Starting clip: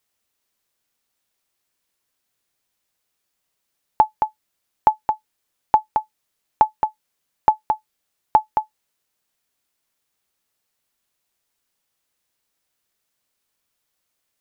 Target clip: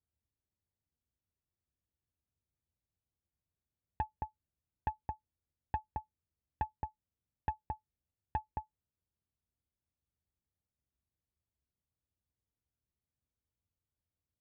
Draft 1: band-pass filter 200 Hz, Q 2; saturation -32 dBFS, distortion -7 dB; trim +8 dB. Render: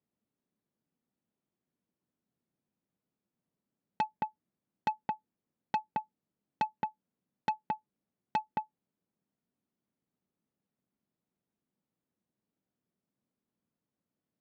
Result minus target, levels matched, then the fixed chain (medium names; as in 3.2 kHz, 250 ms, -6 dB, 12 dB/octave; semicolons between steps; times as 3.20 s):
125 Hz band -12.5 dB
band-pass filter 73 Hz, Q 2; saturation -32 dBFS, distortion -13 dB; trim +8 dB